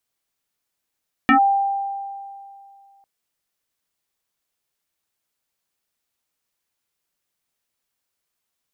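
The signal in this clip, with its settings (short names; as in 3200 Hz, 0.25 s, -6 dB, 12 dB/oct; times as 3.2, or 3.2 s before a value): FM tone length 1.75 s, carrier 792 Hz, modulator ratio 0.65, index 3, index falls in 0.10 s linear, decay 2.42 s, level -9.5 dB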